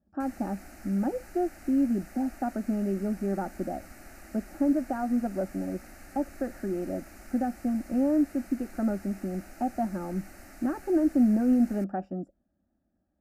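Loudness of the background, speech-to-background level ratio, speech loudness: −49.5 LKFS, 20.0 dB, −29.5 LKFS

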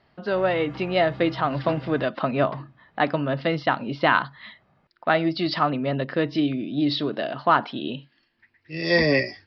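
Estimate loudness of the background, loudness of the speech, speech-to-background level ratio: −40.5 LKFS, −24.0 LKFS, 16.5 dB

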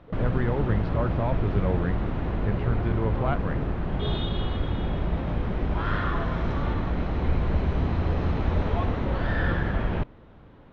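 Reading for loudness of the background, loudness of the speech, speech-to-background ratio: −28.5 LKFS, −30.0 LKFS, −1.5 dB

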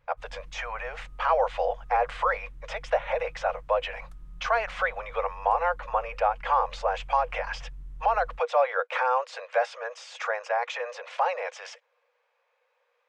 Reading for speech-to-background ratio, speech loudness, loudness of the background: 19.5 dB, −28.5 LKFS, −48.0 LKFS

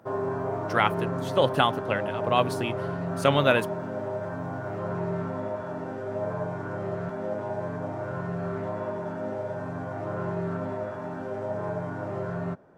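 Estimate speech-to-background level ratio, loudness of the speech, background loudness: 6.0 dB, −26.0 LKFS, −32.0 LKFS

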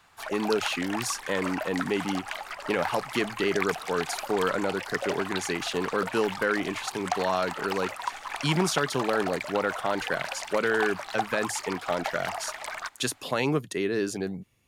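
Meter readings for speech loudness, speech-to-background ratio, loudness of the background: −29.5 LKFS, 5.0 dB, −34.5 LKFS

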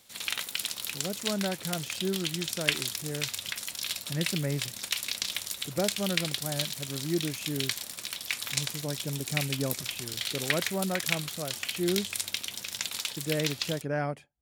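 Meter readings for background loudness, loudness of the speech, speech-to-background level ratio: −32.5 LKFS, −34.5 LKFS, −2.0 dB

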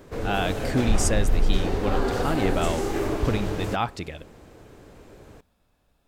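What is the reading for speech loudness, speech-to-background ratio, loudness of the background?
−29.0 LKFS, −1.0 dB, −28.0 LKFS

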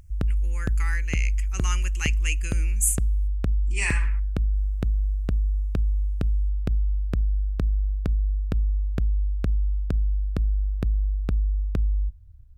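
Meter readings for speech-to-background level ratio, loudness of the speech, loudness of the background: −2.5 dB, −29.5 LKFS, −27.0 LKFS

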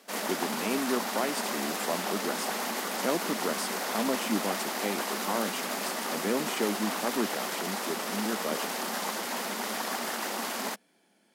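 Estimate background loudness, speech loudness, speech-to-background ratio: −32.0 LKFS, −34.0 LKFS, −2.0 dB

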